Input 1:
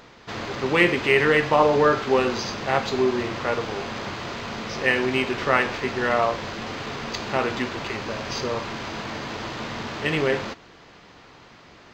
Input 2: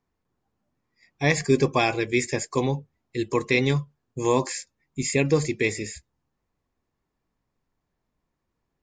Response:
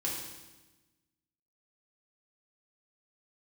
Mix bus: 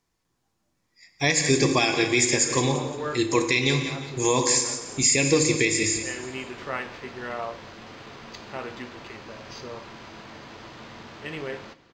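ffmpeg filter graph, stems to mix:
-filter_complex "[0:a]adelay=1200,volume=-12dB,asplit=2[link_01][link_02];[link_02]volume=-17dB[link_03];[1:a]equalizer=frequency=7200:width=0.33:gain=12,volume=-2.5dB,asplit=4[link_04][link_05][link_06][link_07];[link_05]volume=-6.5dB[link_08];[link_06]volume=-9.5dB[link_09];[link_07]apad=whole_len=579164[link_10];[link_01][link_10]sidechaincompress=threshold=-32dB:ratio=8:attack=16:release=501[link_11];[2:a]atrim=start_sample=2205[link_12];[link_03][link_08]amix=inputs=2:normalize=0[link_13];[link_13][link_12]afir=irnorm=-1:irlink=0[link_14];[link_09]aecho=0:1:174|348|522|696|870:1|0.33|0.109|0.0359|0.0119[link_15];[link_11][link_04][link_14][link_15]amix=inputs=4:normalize=0,alimiter=limit=-9dB:level=0:latency=1:release=160"

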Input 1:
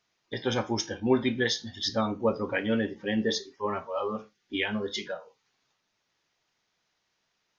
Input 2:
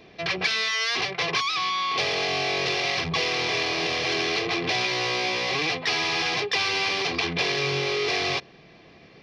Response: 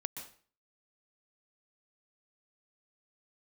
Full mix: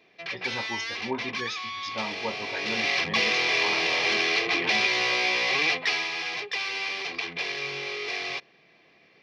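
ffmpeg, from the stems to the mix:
-filter_complex "[0:a]equalizer=frequency=910:width=4.2:gain=12,flanger=delay=9.6:depth=7.4:regen=-67:speed=1.6:shape=triangular,volume=-5.5dB[link_01];[1:a]highpass=frequency=320:poles=1,volume=-1dB,afade=type=in:start_time=2.52:duration=0.5:silence=0.334965,afade=type=out:start_time=5.75:duration=0.35:silence=0.421697[link_02];[link_01][link_02]amix=inputs=2:normalize=0,asoftclip=type=hard:threshold=-13dB,equalizer=frequency=2200:width_type=o:width=0.81:gain=5.5"

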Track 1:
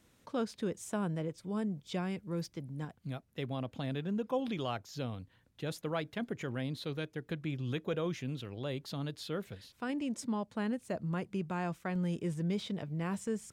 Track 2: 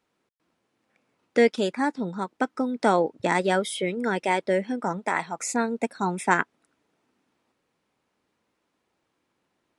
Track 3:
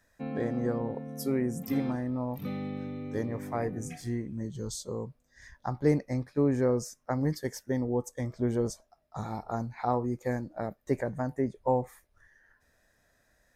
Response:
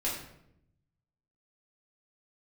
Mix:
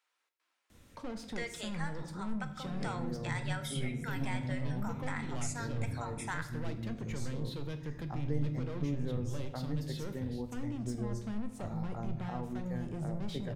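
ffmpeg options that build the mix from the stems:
-filter_complex "[0:a]asoftclip=type=tanh:threshold=-38.5dB,adelay=700,volume=1.5dB,asplit=2[link_01][link_02];[link_02]volume=-9.5dB[link_03];[1:a]acontrast=63,highpass=1200,volume=-10.5dB,asplit=2[link_04][link_05];[link_05]volume=-10.5dB[link_06];[2:a]adelay=2450,volume=-9.5dB,asplit=2[link_07][link_08];[link_08]volume=-7.5dB[link_09];[3:a]atrim=start_sample=2205[link_10];[link_03][link_06][link_09]amix=inputs=3:normalize=0[link_11];[link_11][link_10]afir=irnorm=-1:irlink=0[link_12];[link_01][link_04][link_07][link_12]amix=inputs=4:normalize=0,lowshelf=frequency=95:gain=10,acrossover=split=150[link_13][link_14];[link_14]acompressor=threshold=-44dB:ratio=2[link_15];[link_13][link_15]amix=inputs=2:normalize=0"

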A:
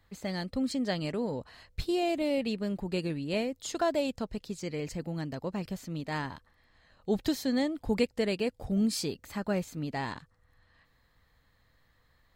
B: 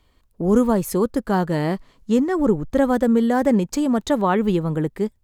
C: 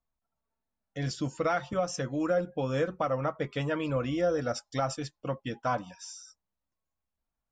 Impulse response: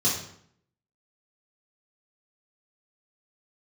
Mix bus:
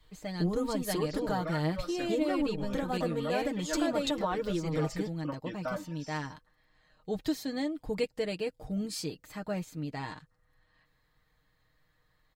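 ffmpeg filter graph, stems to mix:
-filter_complex "[0:a]volume=-5dB[link_01];[1:a]equalizer=frequency=3800:width_type=o:width=0.6:gain=7,flanger=delay=1.8:depth=4.4:regen=46:speed=0.9:shape=triangular,volume=-2dB[link_02];[2:a]lowpass=5000,aecho=1:1:3.4:0.9,volume=-8.5dB[link_03];[link_02][link_03]amix=inputs=2:normalize=0,adynamicequalizer=threshold=0.0178:dfrequency=280:dqfactor=0.78:tfrequency=280:tqfactor=0.78:attack=5:release=100:ratio=0.375:range=2:mode=cutabove:tftype=bell,acompressor=threshold=-30dB:ratio=5,volume=0dB[link_04];[link_01][link_04]amix=inputs=2:normalize=0,aecho=1:1:6.5:0.61"

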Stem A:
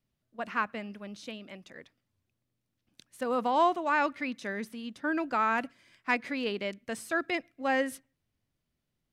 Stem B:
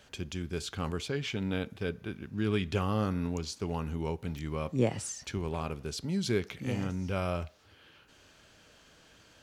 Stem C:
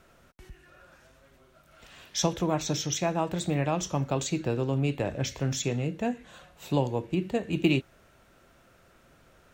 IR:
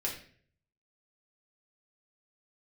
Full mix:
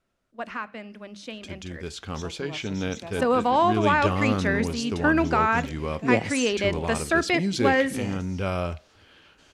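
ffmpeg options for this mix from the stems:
-filter_complex "[0:a]bandreject=frequency=50:width_type=h:width=6,bandreject=frequency=100:width_type=h:width=6,bandreject=frequency=150:width_type=h:width=6,bandreject=frequency=200:width_type=h:width=6,volume=2dB,asplit=2[link_01][link_02];[link_02]volume=-22dB[link_03];[1:a]adelay=1300,volume=-2.5dB[link_04];[2:a]volume=-19dB[link_05];[link_01][link_05]amix=inputs=2:normalize=0,alimiter=limit=-21dB:level=0:latency=1:release=385,volume=0dB[link_06];[3:a]atrim=start_sample=2205[link_07];[link_03][link_07]afir=irnorm=-1:irlink=0[link_08];[link_04][link_06][link_08]amix=inputs=3:normalize=0,lowpass=10000,equalizer=frequency=130:width=7.7:gain=-14,dynaudnorm=framelen=930:gausssize=5:maxgain=8dB"

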